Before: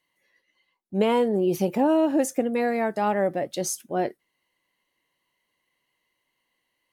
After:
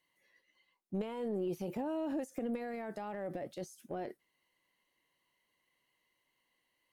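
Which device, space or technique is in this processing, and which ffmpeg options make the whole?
de-esser from a sidechain: -filter_complex "[0:a]asplit=2[a][b];[b]highpass=f=6.9k:p=1,apad=whole_len=305404[c];[a][c]sidechaincompress=threshold=-53dB:ratio=5:attack=0.84:release=37,volume=-3.5dB"

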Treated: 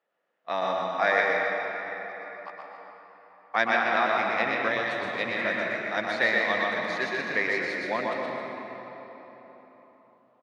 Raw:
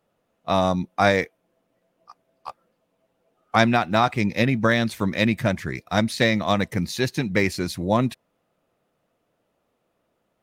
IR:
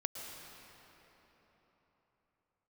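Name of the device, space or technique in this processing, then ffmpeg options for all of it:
station announcement: -filter_complex "[0:a]highpass=430,lowpass=3.9k,equalizer=f=1.8k:t=o:w=0.4:g=9,aecho=1:1:122.4|160.3|268.2:0.708|0.282|0.251[a];[1:a]atrim=start_sample=2205[b];[a][b]afir=irnorm=-1:irlink=0,asettb=1/sr,asplit=3[c][d][e];[c]atrim=end=4.684[f];[d]atrim=start=4.68:end=5.37,asetpts=PTS-STARTPTS,afade=t=in:d=0.004:c=qsin,afade=t=out:st=0.686:d=0.004:c=qsin,equalizer=f=100:t=o:w=0.67:g=6,equalizer=f=250:t=o:w=0.67:g=-4,equalizer=f=1.6k:t=o:w=0.67:g=-8[g];[e]atrim=start=5.366[h];[f][g]acrossfade=d=0.004:c1=hsin:c2=qsin[i];[i][h]acrossfade=d=0.004:c1=qsin:c2=hsin,volume=-6dB"

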